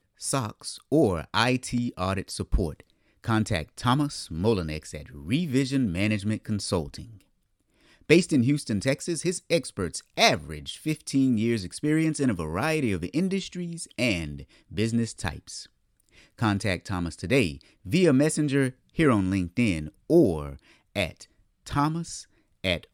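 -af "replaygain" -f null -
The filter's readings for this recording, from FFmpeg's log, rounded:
track_gain = +5.8 dB
track_peak = 0.389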